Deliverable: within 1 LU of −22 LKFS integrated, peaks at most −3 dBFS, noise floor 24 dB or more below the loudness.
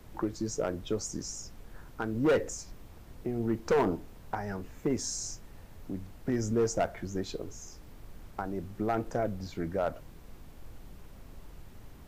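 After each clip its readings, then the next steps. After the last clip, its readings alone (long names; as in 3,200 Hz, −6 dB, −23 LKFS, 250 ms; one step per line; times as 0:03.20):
share of clipped samples 0.6%; peaks flattened at −21.0 dBFS; background noise floor −51 dBFS; target noise floor −57 dBFS; integrated loudness −33.0 LKFS; sample peak −21.0 dBFS; target loudness −22.0 LKFS
→ clipped peaks rebuilt −21 dBFS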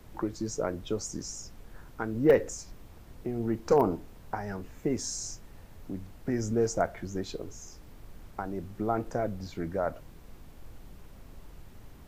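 share of clipped samples 0.0%; background noise floor −51 dBFS; target noise floor −56 dBFS
→ noise reduction from a noise print 6 dB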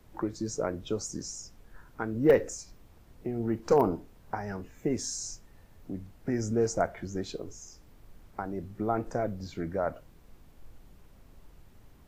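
background noise floor −56 dBFS; integrated loudness −32.0 LKFS; sample peak −12.0 dBFS; target loudness −22.0 LKFS
→ level +10 dB
brickwall limiter −3 dBFS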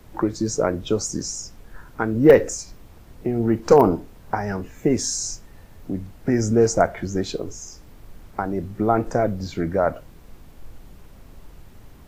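integrated loudness −22.0 LKFS; sample peak −3.0 dBFS; background noise floor −46 dBFS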